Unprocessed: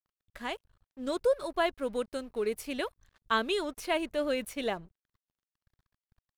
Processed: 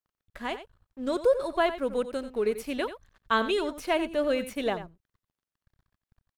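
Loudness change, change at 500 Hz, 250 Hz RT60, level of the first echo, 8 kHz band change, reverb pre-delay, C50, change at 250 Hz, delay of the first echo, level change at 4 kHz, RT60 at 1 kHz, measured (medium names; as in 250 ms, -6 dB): +3.5 dB, +4.0 dB, no reverb, -12.0 dB, -1.0 dB, no reverb, no reverb, +4.0 dB, 90 ms, +1.0 dB, no reverb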